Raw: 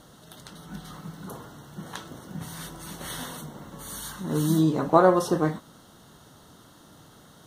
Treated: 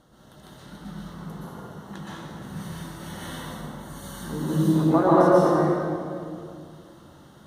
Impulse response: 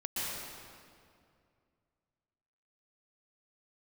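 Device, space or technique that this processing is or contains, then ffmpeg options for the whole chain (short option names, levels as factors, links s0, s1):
swimming-pool hall: -filter_complex "[1:a]atrim=start_sample=2205[s0];[0:a][s0]afir=irnorm=-1:irlink=0,highshelf=f=3300:g=-7.5,volume=0.75"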